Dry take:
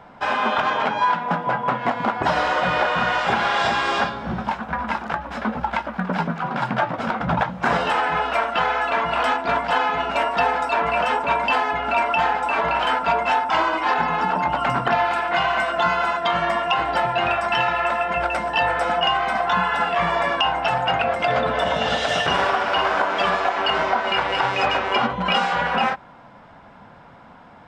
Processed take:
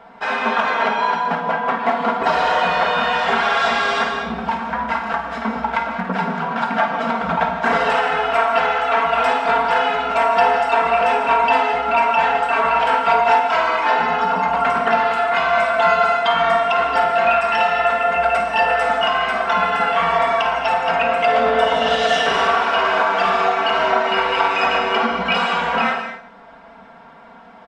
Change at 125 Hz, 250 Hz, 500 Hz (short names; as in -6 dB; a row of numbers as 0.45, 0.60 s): -4.0, +1.0, +5.0 dB